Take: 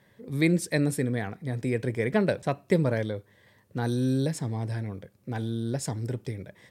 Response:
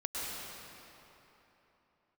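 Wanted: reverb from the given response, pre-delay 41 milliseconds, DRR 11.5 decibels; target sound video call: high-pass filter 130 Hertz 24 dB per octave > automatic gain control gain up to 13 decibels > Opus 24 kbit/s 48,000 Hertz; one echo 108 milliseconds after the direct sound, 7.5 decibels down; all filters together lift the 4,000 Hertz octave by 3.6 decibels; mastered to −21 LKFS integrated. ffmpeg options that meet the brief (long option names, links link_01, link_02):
-filter_complex "[0:a]equalizer=frequency=4000:width_type=o:gain=4,aecho=1:1:108:0.422,asplit=2[link_01][link_02];[1:a]atrim=start_sample=2205,adelay=41[link_03];[link_02][link_03]afir=irnorm=-1:irlink=0,volume=-16dB[link_04];[link_01][link_04]amix=inputs=2:normalize=0,highpass=frequency=130:width=0.5412,highpass=frequency=130:width=1.3066,dynaudnorm=maxgain=13dB,volume=7.5dB" -ar 48000 -c:a libopus -b:a 24k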